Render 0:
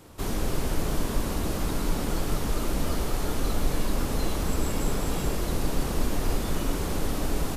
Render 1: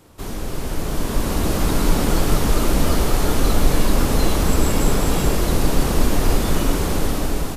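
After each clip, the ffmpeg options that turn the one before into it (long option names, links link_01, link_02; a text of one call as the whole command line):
ffmpeg -i in.wav -af "dynaudnorm=framelen=470:gausssize=5:maxgain=11.5dB" out.wav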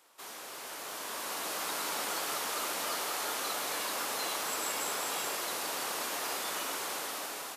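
ffmpeg -i in.wav -af "highpass=850,volume=-7dB" out.wav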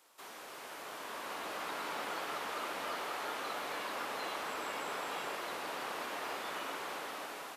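ffmpeg -i in.wav -filter_complex "[0:a]acrossover=split=3400[link_01][link_02];[link_02]acompressor=threshold=-52dB:ratio=4:attack=1:release=60[link_03];[link_01][link_03]amix=inputs=2:normalize=0,volume=-2dB" out.wav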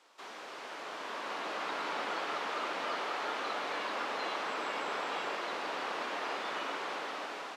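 ffmpeg -i in.wav -filter_complex "[0:a]acrossover=split=150 6600:gain=0.0794 1 0.0708[link_01][link_02][link_03];[link_01][link_02][link_03]amix=inputs=3:normalize=0,volume=3.5dB" out.wav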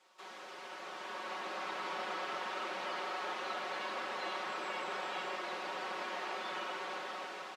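ffmpeg -i in.wav -af "aecho=1:1:5.4:0.96,volume=-6dB" out.wav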